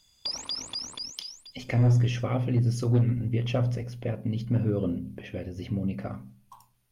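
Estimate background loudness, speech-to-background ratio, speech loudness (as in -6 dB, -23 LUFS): -34.0 LUFS, 6.5 dB, -27.5 LUFS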